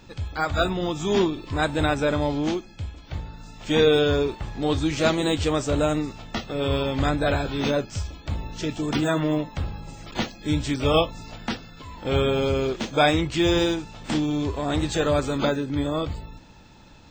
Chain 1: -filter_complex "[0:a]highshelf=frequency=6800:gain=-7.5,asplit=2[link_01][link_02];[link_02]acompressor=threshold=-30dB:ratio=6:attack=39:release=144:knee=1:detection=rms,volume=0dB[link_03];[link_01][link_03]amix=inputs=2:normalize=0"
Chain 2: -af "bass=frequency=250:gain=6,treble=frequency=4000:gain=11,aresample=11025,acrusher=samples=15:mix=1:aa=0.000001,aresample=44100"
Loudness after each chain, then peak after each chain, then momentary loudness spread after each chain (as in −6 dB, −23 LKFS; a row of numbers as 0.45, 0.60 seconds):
−22.0, −22.5 LKFS; −5.0, −5.0 dBFS; 11, 11 LU